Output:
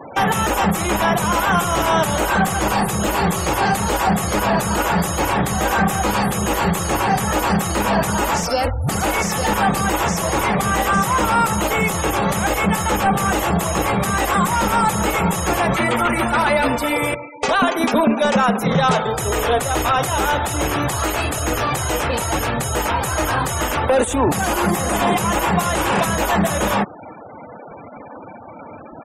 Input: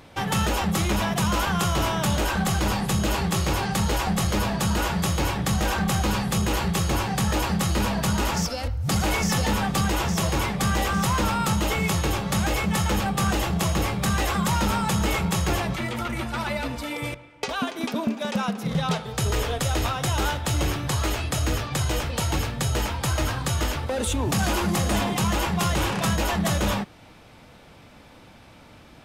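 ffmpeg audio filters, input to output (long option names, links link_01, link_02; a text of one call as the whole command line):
ffmpeg -i in.wav -filter_complex "[0:a]acrossover=split=120|1300|6500[link_01][link_02][link_03][link_04];[link_01]aecho=1:1:2.3:0.38[link_05];[link_04]crystalizer=i=5.5:c=0[link_06];[link_05][link_02][link_03][link_06]amix=inputs=4:normalize=0,acompressor=threshold=-21dB:ratio=2.5,asplit=2[link_07][link_08];[link_08]highpass=frequency=720:poles=1,volume=24dB,asoftclip=type=tanh:threshold=-6.5dB[link_09];[link_07][link_09]amix=inputs=2:normalize=0,lowpass=frequency=1100:poles=1,volume=-6dB,afftfilt=real='re*gte(hypot(re,im),0.0251)':imag='im*gte(hypot(re,im),0.0251)':win_size=1024:overlap=0.75,volume=4dB" out.wav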